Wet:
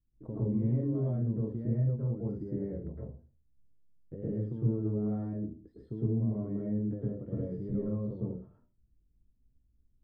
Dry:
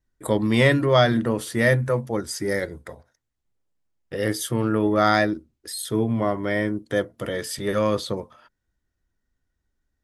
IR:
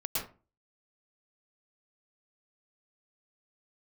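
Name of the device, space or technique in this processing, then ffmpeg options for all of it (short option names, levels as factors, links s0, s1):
television next door: -filter_complex "[0:a]acompressor=threshold=0.0316:ratio=6,lowpass=260[s0];[1:a]atrim=start_sample=2205[s1];[s0][s1]afir=irnorm=-1:irlink=0"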